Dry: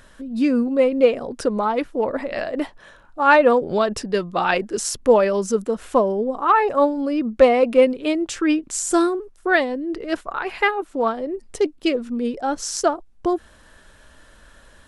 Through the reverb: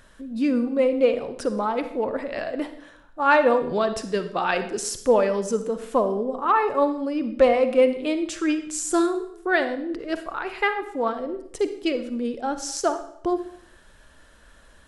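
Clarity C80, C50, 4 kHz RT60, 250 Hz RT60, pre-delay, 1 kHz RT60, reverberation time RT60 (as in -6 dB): 13.5 dB, 10.5 dB, 0.65 s, 0.75 s, 40 ms, 0.65 s, 0.65 s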